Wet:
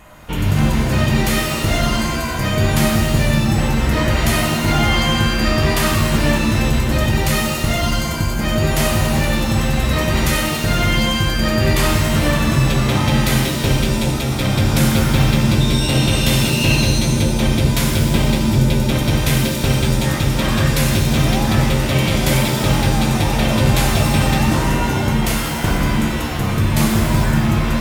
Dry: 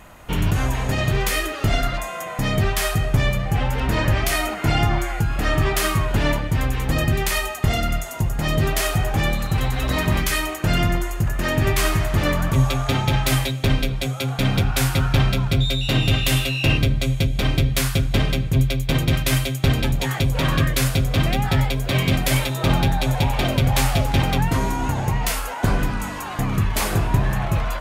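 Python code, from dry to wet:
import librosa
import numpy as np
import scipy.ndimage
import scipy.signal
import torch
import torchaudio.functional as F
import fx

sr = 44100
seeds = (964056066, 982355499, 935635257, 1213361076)

y = fx.rev_shimmer(x, sr, seeds[0], rt60_s=1.4, semitones=7, shimmer_db=-2, drr_db=2.0)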